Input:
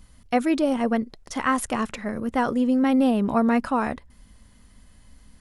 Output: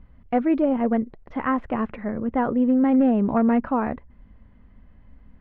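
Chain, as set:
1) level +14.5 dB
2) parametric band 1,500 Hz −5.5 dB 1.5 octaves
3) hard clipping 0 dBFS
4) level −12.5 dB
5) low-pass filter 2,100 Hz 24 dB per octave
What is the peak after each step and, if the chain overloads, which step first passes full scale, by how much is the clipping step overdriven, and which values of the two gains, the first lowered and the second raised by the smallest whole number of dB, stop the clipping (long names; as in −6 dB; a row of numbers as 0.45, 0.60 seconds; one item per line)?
+6.5, +5.0, 0.0, −12.5, −12.0 dBFS
step 1, 5.0 dB
step 1 +9.5 dB, step 4 −7.5 dB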